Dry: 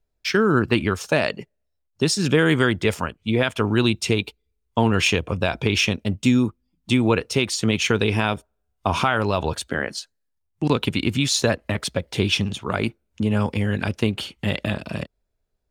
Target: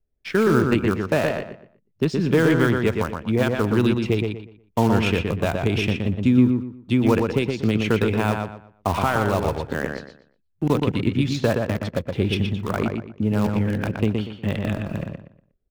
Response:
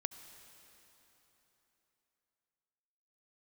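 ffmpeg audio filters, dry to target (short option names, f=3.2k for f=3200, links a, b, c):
-filter_complex "[0:a]highshelf=f=2.6k:g=-9.5,acrossover=split=640|1400[a][b][c];[b]acrusher=bits=6:dc=4:mix=0:aa=0.000001[d];[c]adynamicsmooth=sensitivity=1.5:basefreq=3k[e];[a][d][e]amix=inputs=3:normalize=0,asplit=2[f][g];[g]adelay=120,lowpass=f=3.4k:p=1,volume=-4dB,asplit=2[h][i];[i]adelay=120,lowpass=f=3.4k:p=1,volume=0.29,asplit=2[j][k];[k]adelay=120,lowpass=f=3.4k:p=1,volume=0.29,asplit=2[l][m];[m]adelay=120,lowpass=f=3.4k:p=1,volume=0.29[n];[f][h][j][l][n]amix=inputs=5:normalize=0"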